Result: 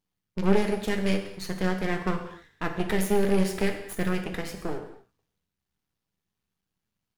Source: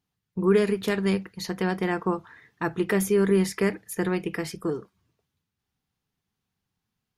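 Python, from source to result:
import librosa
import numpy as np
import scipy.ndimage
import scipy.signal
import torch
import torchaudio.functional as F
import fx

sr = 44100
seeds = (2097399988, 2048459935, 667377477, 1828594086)

y = fx.rattle_buzz(x, sr, strikes_db=-25.0, level_db=-22.0)
y = np.maximum(y, 0.0)
y = fx.rev_gated(y, sr, seeds[0], gate_ms=290, shape='falling', drr_db=4.5)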